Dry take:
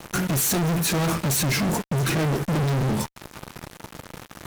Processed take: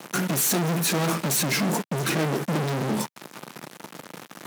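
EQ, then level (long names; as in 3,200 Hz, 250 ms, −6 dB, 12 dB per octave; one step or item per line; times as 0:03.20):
high-pass filter 160 Hz 24 dB per octave
0.0 dB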